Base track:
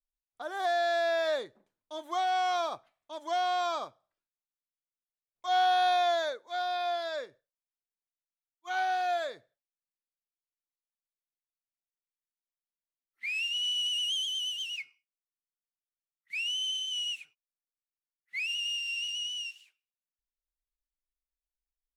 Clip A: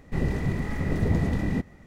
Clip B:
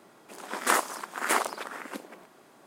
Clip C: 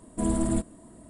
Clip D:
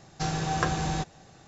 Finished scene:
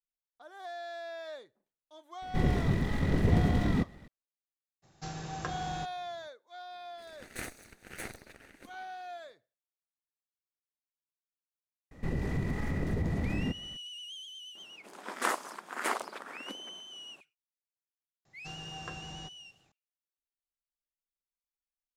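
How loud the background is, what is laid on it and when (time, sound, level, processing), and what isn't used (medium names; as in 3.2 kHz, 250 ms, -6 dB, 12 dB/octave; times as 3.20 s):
base track -13.5 dB
2.22 s: add A -1.5 dB + delay time shaken by noise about 1.5 kHz, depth 0.036 ms
4.82 s: add D -11 dB, fades 0.02 s
6.69 s: add B -15 dB, fades 0.05 s + comb filter that takes the minimum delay 0.47 ms
11.91 s: add A -1.5 dB + compression 3:1, threshold -27 dBFS
14.55 s: add B -6 dB + treble shelf 8.7 kHz -8 dB
18.25 s: add D -17 dB
not used: C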